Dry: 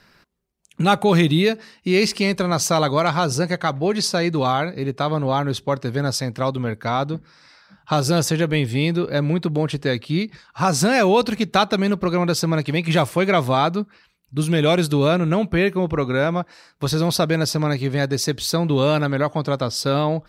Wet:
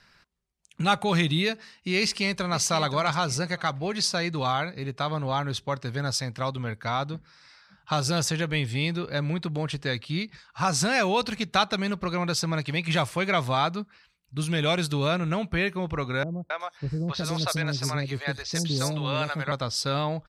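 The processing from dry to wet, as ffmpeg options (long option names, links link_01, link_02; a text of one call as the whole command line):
ffmpeg -i in.wav -filter_complex "[0:a]asplit=2[link_01][link_02];[link_02]afade=type=in:start_time=2:duration=0.01,afade=type=out:start_time=2.61:duration=0.01,aecho=0:1:530|1060|1590:0.237137|0.0592843|0.0148211[link_03];[link_01][link_03]amix=inputs=2:normalize=0,asettb=1/sr,asplit=3[link_04][link_05][link_06];[link_04]atrim=end=16.234[link_07];[link_05]atrim=start=16.23:end=19.52,asetpts=PTS-STARTPTS,afade=type=in:duration=0.004:curve=qsin,afade=type=out:start_time=3.286:duration=0.004:curve=qsin,acrossover=split=510|5000[link_08][link_09][link_10];[link_09]adelay=270[link_11];[link_10]adelay=370[link_12];[link_08][link_11][link_12]amix=inputs=3:normalize=0,atrim=end_sample=145089[link_13];[link_06]atrim=start=19.516[link_14];[link_07][link_13]acrossfade=duration=0.004:curve1=hsin:curve2=qsin[link_15];[link_15][link_14]acrossfade=duration=0.004:curve1=qsin:curve2=hsin,lowpass=9600,equalizer=frequency=340:width=0.59:gain=-9,volume=-2.5dB" out.wav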